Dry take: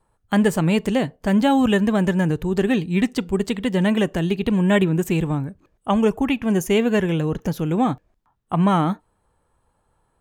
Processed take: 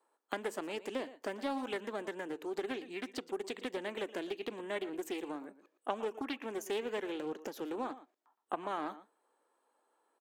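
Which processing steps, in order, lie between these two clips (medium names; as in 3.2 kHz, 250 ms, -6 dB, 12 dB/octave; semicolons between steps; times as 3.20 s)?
compression 5:1, threshold -25 dBFS, peak gain reduction 12 dB; steep high-pass 290 Hz 36 dB/octave; peaking EQ 10 kHz -5 dB 0.2 oct; echo from a far wall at 20 m, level -15 dB; loudspeaker Doppler distortion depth 0.28 ms; trim -6.5 dB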